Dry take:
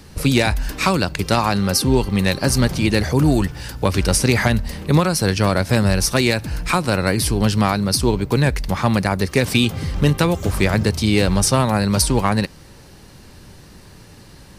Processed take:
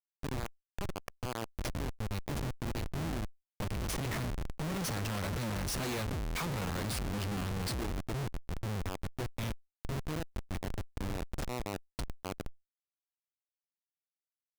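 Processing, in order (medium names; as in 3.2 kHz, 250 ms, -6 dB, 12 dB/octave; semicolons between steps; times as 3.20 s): Doppler pass-by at 5.77 s, 21 m/s, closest 13 m; Schmitt trigger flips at -29.5 dBFS; level flattener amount 50%; trim -8.5 dB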